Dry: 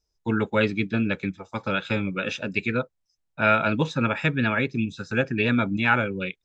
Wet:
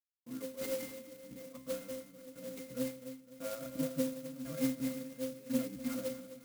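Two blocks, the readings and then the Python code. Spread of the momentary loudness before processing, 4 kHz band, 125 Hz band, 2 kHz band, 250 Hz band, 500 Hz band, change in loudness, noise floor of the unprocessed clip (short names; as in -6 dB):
7 LU, -16.0 dB, -22.0 dB, -28.0 dB, -12.5 dB, -12.0 dB, -15.0 dB, -77 dBFS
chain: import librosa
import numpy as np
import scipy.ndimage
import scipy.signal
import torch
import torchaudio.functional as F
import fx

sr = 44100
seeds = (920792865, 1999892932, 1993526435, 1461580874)

y = fx.reverse_delay_fb(x, sr, ms=163, feedback_pct=50, wet_db=-5.0)
y = scipy.signal.sosfilt(scipy.signal.butter(4, 140.0, 'highpass', fs=sr, output='sos'), y)
y = y + 0.92 * np.pad(y, (int(4.3 * sr / 1000.0), 0))[:len(y)]
y = fx.step_gate(y, sr, bpm=172, pattern='...xxx.xxx..', floor_db=-12.0, edge_ms=4.5)
y = fx.octave_resonator(y, sr, note='C', decay_s=0.41)
y = fx.echo_feedback(y, sr, ms=254, feedback_pct=49, wet_db=-14.0)
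y = fx.clock_jitter(y, sr, seeds[0], jitter_ms=0.099)
y = y * 10.0 ** (1.0 / 20.0)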